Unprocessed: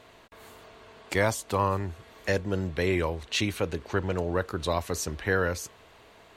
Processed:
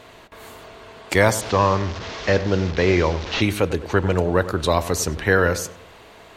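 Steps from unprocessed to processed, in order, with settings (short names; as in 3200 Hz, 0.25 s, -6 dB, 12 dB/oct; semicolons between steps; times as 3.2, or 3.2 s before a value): 1.41–3.42 delta modulation 32 kbps, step -35 dBFS; darkening echo 98 ms, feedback 42%, low-pass 1600 Hz, level -13 dB; gain +8.5 dB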